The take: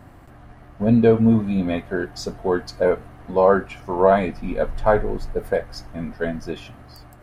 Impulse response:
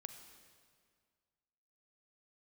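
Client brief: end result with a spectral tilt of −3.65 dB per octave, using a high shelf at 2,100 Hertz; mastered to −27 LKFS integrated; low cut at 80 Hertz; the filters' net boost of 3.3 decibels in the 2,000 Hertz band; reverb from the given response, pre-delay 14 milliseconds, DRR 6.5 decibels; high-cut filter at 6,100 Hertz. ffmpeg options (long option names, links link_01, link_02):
-filter_complex "[0:a]highpass=80,lowpass=6100,equalizer=frequency=2000:width_type=o:gain=8.5,highshelf=frequency=2100:gain=-7,asplit=2[link_01][link_02];[1:a]atrim=start_sample=2205,adelay=14[link_03];[link_02][link_03]afir=irnorm=-1:irlink=0,volume=-2dB[link_04];[link_01][link_04]amix=inputs=2:normalize=0,volume=-7dB"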